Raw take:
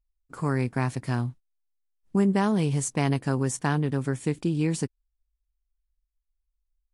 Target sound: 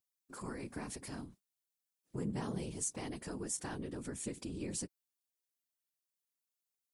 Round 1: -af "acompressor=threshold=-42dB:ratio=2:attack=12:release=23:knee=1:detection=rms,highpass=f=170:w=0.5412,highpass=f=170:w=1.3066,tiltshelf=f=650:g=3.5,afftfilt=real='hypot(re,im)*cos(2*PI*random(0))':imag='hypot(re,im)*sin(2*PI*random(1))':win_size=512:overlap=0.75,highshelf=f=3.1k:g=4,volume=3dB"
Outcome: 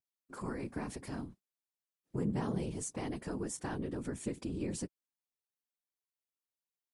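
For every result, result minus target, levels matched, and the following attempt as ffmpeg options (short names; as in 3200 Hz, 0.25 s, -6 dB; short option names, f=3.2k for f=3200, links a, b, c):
8000 Hz band -6.5 dB; compressor: peak gain reduction -4 dB
-af "acompressor=threshold=-42dB:ratio=2:attack=12:release=23:knee=1:detection=rms,highpass=f=170:w=0.5412,highpass=f=170:w=1.3066,tiltshelf=f=650:g=3.5,afftfilt=real='hypot(re,im)*cos(2*PI*random(0))':imag='hypot(re,im)*sin(2*PI*random(1))':win_size=512:overlap=0.75,highshelf=f=3.1k:g=13.5,volume=3dB"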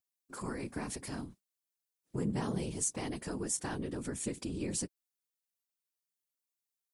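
compressor: peak gain reduction -4 dB
-af "acompressor=threshold=-50.5dB:ratio=2:attack=12:release=23:knee=1:detection=rms,highpass=f=170:w=0.5412,highpass=f=170:w=1.3066,tiltshelf=f=650:g=3.5,afftfilt=real='hypot(re,im)*cos(2*PI*random(0))':imag='hypot(re,im)*sin(2*PI*random(1))':win_size=512:overlap=0.75,highshelf=f=3.1k:g=13.5,volume=3dB"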